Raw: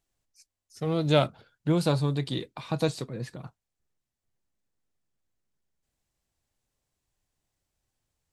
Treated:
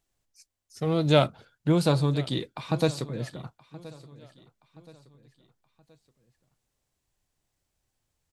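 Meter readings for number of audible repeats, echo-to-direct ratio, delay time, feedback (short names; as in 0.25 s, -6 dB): 2, -19.0 dB, 1.024 s, 42%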